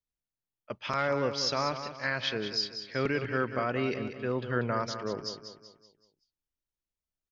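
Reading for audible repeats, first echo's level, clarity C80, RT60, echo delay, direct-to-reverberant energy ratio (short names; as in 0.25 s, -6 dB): 4, -9.5 dB, none, none, 0.19 s, none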